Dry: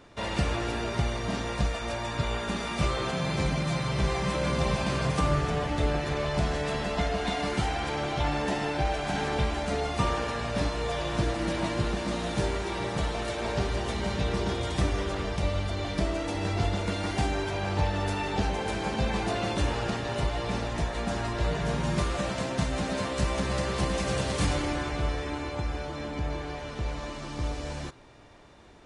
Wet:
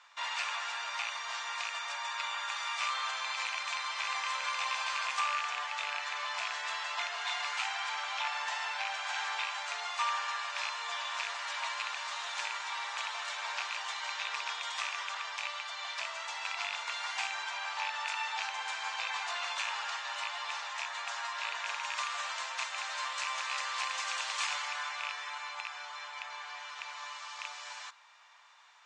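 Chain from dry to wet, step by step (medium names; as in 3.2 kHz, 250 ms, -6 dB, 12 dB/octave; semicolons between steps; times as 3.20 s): rattle on loud lows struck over -25 dBFS, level -22 dBFS; elliptic band-pass 970–7400 Hz, stop band 50 dB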